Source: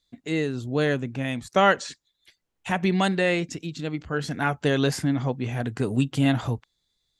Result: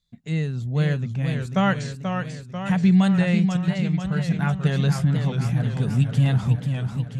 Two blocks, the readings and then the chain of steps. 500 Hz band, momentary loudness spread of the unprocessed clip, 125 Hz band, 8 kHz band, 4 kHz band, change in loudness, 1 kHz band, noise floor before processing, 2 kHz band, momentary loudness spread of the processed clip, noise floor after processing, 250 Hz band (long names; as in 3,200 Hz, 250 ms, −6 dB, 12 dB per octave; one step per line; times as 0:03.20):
−5.5 dB, 11 LU, +8.5 dB, −3.0 dB, −3.0 dB, +3.0 dB, −3.5 dB, −77 dBFS, −3.5 dB, 9 LU, −39 dBFS, +4.5 dB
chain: low shelf with overshoot 230 Hz +8 dB, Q 3
feedback echo with a swinging delay time 489 ms, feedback 62%, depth 146 cents, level −6.5 dB
level −4.5 dB